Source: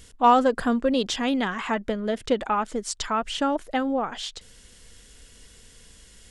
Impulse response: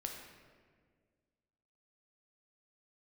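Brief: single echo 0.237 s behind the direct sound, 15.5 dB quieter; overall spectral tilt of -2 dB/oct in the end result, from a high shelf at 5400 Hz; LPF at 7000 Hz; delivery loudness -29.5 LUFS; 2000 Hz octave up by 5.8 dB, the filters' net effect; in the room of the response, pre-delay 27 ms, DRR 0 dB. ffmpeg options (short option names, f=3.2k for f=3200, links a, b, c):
-filter_complex "[0:a]lowpass=7k,equalizer=f=2k:t=o:g=8.5,highshelf=f=5.4k:g=-8,aecho=1:1:237:0.168,asplit=2[a][b];[1:a]atrim=start_sample=2205,adelay=27[c];[b][c]afir=irnorm=-1:irlink=0,volume=1dB[d];[a][d]amix=inputs=2:normalize=0,volume=-9.5dB"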